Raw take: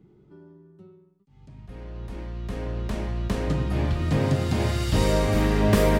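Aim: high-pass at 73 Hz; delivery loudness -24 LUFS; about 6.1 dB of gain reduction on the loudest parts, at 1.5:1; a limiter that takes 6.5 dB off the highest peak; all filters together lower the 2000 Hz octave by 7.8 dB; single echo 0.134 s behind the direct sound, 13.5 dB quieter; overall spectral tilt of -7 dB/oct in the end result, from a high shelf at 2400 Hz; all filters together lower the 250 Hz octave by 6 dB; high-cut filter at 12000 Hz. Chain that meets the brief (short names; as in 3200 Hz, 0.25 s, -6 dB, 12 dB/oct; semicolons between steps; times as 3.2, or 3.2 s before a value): HPF 73 Hz; LPF 12000 Hz; bell 250 Hz -8.5 dB; bell 2000 Hz -6.5 dB; high shelf 2400 Hz -6.5 dB; compressor 1.5:1, threshold -35 dBFS; limiter -25 dBFS; echo 0.134 s -13.5 dB; gain +11.5 dB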